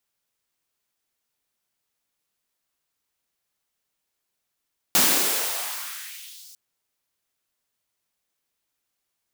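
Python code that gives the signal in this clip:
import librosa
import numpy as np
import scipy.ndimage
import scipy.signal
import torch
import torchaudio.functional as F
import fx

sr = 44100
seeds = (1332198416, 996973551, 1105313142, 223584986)

y = fx.riser_noise(sr, seeds[0], length_s=1.6, colour='white', kind='highpass', start_hz=160.0, end_hz=5600.0, q=1.8, swell_db=-31.5, law='exponential')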